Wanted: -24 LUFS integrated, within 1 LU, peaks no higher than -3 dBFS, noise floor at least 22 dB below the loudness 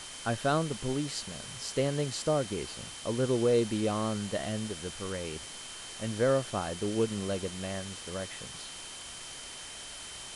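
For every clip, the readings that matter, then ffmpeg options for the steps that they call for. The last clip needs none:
steady tone 3.1 kHz; tone level -48 dBFS; noise floor -44 dBFS; noise floor target -55 dBFS; loudness -33.0 LUFS; peak level -16.0 dBFS; loudness target -24.0 LUFS
-> -af "bandreject=f=3100:w=30"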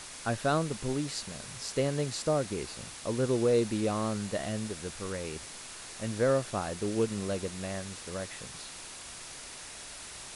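steady tone not found; noise floor -45 dBFS; noise floor target -55 dBFS
-> -af "afftdn=nr=10:nf=-45"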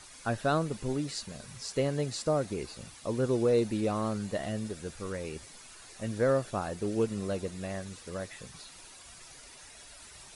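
noise floor -51 dBFS; noise floor target -55 dBFS
-> -af "afftdn=nr=6:nf=-51"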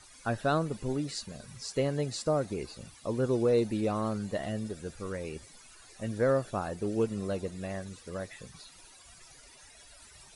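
noise floor -55 dBFS; loudness -32.5 LUFS; peak level -16.0 dBFS; loudness target -24.0 LUFS
-> -af "volume=2.66"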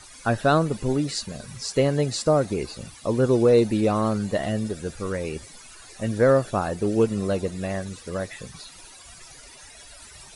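loudness -24.0 LUFS; peak level -7.5 dBFS; noise floor -46 dBFS

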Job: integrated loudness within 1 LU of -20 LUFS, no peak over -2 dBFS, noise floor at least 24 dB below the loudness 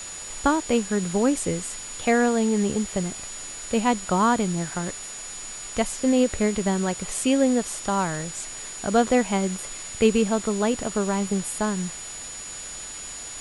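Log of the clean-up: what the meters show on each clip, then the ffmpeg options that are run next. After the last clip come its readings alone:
steady tone 6.9 kHz; tone level -36 dBFS; noise floor -37 dBFS; noise floor target -49 dBFS; loudness -25.0 LUFS; peak level -7.0 dBFS; loudness target -20.0 LUFS
-> -af "bandreject=f=6900:w=30"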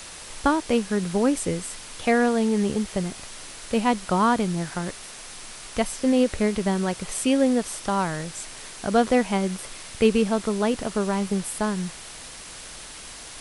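steady tone not found; noise floor -41 dBFS; noise floor target -49 dBFS
-> -af "afftdn=nr=8:nf=-41"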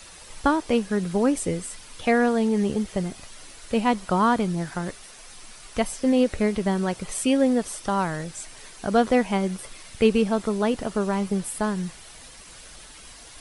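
noise floor -45 dBFS; noise floor target -49 dBFS
-> -af "afftdn=nr=6:nf=-45"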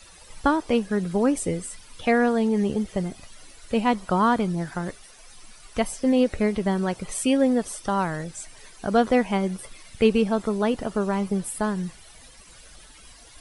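noise floor -49 dBFS; loudness -24.5 LUFS; peak level -7.0 dBFS; loudness target -20.0 LUFS
-> -af "volume=1.68"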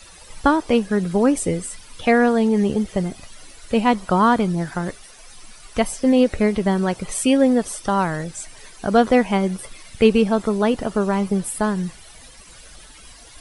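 loudness -20.0 LUFS; peak level -2.5 dBFS; noise floor -44 dBFS

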